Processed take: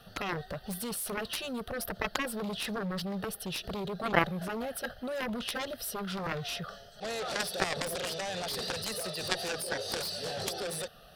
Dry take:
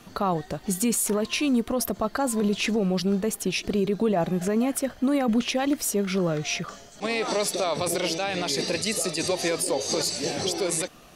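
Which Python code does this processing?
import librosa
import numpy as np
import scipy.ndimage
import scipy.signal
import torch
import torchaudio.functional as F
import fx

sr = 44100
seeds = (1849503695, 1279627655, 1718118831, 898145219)

y = fx.fixed_phaser(x, sr, hz=1500.0, stages=8)
y = fx.cheby_harmonics(y, sr, harmonics=(3,), levels_db=(-7,), full_scale_db=-15.0)
y = F.gain(torch.from_numpy(y), 8.0).numpy()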